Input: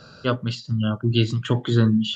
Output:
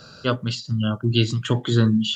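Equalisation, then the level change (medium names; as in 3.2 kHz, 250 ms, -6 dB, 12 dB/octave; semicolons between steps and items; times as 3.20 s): treble shelf 5.3 kHz +10 dB; 0.0 dB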